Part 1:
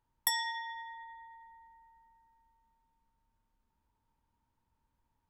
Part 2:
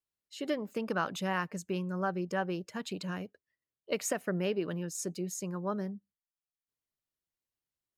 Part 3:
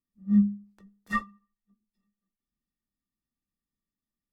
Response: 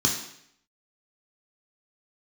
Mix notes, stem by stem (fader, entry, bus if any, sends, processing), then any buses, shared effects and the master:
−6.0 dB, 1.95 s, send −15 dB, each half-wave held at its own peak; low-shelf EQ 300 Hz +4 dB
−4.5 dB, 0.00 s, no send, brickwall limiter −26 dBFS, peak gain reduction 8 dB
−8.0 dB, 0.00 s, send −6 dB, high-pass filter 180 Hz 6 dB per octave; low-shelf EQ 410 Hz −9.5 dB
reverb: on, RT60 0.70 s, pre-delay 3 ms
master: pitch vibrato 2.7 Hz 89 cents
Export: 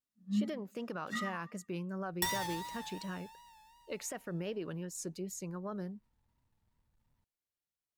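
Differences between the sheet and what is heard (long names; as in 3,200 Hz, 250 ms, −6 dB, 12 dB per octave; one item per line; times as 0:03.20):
stem 3: send −6 dB → 0 dB
reverb return −9.0 dB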